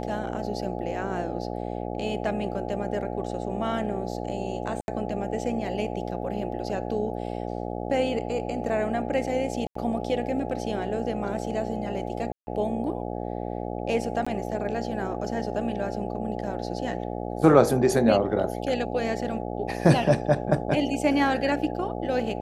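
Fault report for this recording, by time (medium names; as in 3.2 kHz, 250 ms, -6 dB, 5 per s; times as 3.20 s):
buzz 60 Hz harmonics 14 -32 dBFS
4.81–4.88 s: dropout 71 ms
9.67–9.75 s: dropout 84 ms
12.32–12.47 s: dropout 150 ms
14.25–14.27 s: dropout 15 ms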